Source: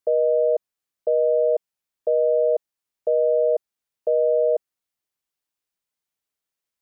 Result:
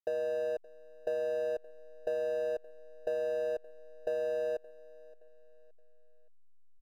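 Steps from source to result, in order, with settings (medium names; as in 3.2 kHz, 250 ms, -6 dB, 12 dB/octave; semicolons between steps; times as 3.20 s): send-on-delta sampling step -45.5 dBFS; Bessel low-pass 550 Hz, order 8; bass shelf 380 Hz -11.5 dB; compression, threshold -32 dBFS, peak gain reduction 8.5 dB; power-law waveshaper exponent 0.7; feedback delay 571 ms, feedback 41%, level -22 dB; trim -1.5 dB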